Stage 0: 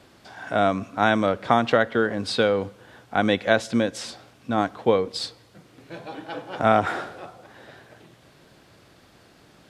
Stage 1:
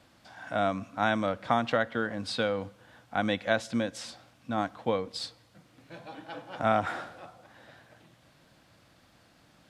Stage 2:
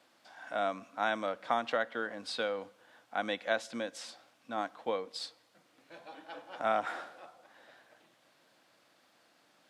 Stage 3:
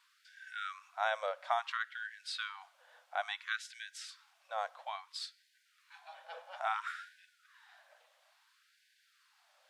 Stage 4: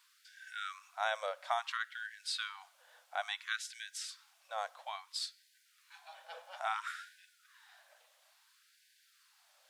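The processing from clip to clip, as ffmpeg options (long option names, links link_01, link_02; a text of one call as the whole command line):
ffmpeg -i in.wav -af "equalizer=frequency=400:width_type=o:width=0.28:gain=-12,volume=-6.5dB" out.wav
ffmpeg -i in.wav -af "highpass=340,volume=-4dB" out.wav
ffmpeg -i in.wav -af "afftfilt=real='re*gte(b*sr/1024,470*pow(1500/470,0.5+0.5*sin(2*PI*0.59*pts/sr)))':imag='im*gte(b*sr/1024,470*pow(1500/470,0.5+0.5*sin(2*PI*0.59*pts/sr)))':win_size=1024:overlap=0.75,volume=-1.5dB" out.wav
ffmpeg -i in.wav -af "highshelf=frequency=4800:gain=11.5,volume=-2dB" out.wav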